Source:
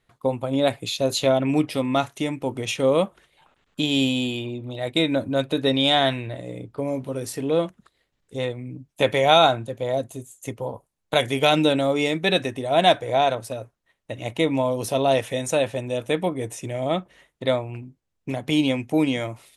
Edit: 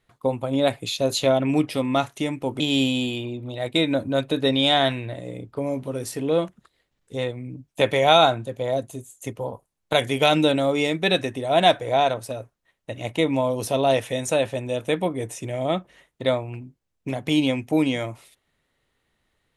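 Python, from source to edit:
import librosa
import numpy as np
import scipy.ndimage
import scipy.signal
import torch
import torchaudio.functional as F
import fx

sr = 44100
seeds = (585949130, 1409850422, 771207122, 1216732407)

y = fx.edit(x, sr, fx.cut(start_s=2.6, length_s=1.21), tone=tone)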